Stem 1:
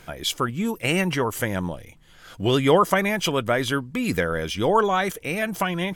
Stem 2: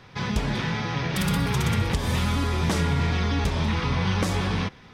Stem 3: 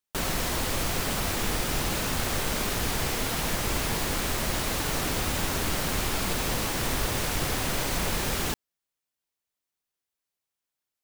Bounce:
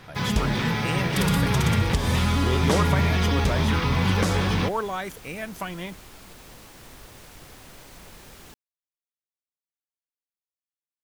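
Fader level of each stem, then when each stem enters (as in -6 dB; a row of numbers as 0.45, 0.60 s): -8.5, +2.0, -18.0 dB; 0.00, 0.00, 0.00 s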